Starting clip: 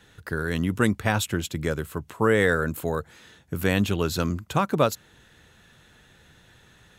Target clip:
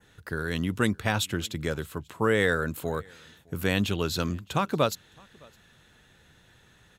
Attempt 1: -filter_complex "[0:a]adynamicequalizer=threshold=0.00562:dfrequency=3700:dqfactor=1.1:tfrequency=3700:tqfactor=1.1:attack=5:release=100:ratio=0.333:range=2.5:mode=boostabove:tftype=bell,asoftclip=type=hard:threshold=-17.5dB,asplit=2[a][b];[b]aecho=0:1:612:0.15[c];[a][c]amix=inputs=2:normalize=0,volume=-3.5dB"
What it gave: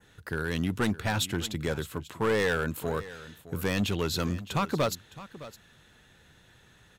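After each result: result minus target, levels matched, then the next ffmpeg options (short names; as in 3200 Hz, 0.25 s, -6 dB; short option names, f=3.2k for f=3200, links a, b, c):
hard clip: distortion +36 dB; echo-to-direct +11.5 dB
-filter_complex "[0:a]adynamicequalizer=threshold=0.00562:dfrequency=3700:dqfactor=1.1:tfrequency=3700:tqfactor=1.1:attack=5:release=100:ratio=0.333:range=2.5:mode=boostabove:tftype=bell,asoftclip=type=hard:threshold=-6.5dB,asplit=2[a][b];[b]aecho=0:1:612:0.15[c];[a][c]amix=inputs=2:normalize=0,volume=-3.5dB"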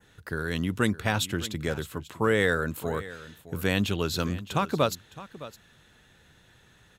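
echo-to-direct +11.5 dB
-filter_complex "[0:a]adynamicequalizer=threshold=0.00562:dfrequency=3700:dqfactor=1.1:tfrequency=3700:tqfactor=1.1:attack=5:release=100:ratio=0.333:range=2.5:mode=boostabove:tftype=bell,asoftclip=type=hard:threshold=-6.5dB,asplit=2[a][b];[b]aecho=0:1:612:0.0398[c];[a][c]amix=inputs=2:normalize=0,volume=-3.5dB"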